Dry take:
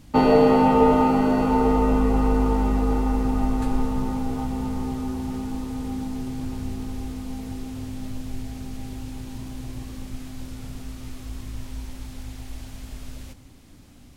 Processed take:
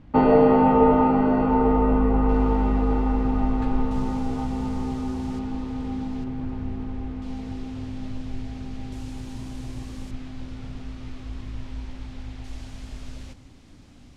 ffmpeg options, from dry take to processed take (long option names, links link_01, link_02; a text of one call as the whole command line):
ffmpeg -i in.wav -af "asetnsamples=nb_out_samples=441:pad=0,asendcmd='2.29 lowpass f 3200;3.91 lowpass f 6900;5.39 lowpass f 3900;6.24 lowpass f 2200;7.22 lowpass f 4300;8.92 lowpass f 8300;10.11 lowpass f 3900;12.44 lowpass f 6600',lowpass=2000" out.wav